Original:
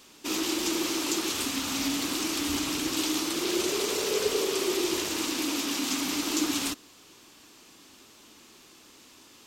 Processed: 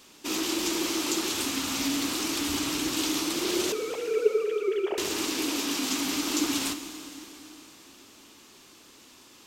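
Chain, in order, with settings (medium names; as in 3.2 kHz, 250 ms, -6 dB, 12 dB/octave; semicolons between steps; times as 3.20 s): 3.72–4.98 s: formants replaced by sine waves; plate-style reverb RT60 3.9 s, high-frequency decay 0.95×, DRR 8.5 dB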